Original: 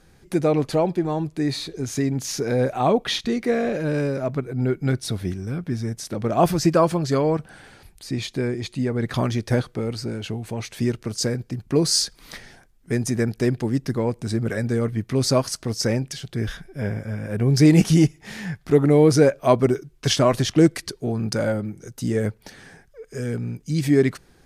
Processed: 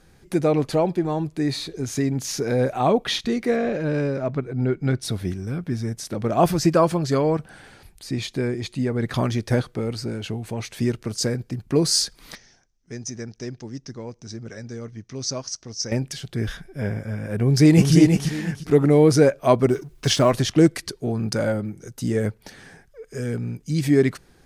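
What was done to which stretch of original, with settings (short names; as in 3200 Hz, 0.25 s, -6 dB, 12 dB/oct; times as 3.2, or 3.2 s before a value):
3.56–5.02 air absorption 69 m
12.35–15.92 ladder low-pass 6300 Hz, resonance 75%
17.42–17.93 echo throw 0.35 s, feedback 25%, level -4 dB
19.71–20.31 G.711 law mismatch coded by mu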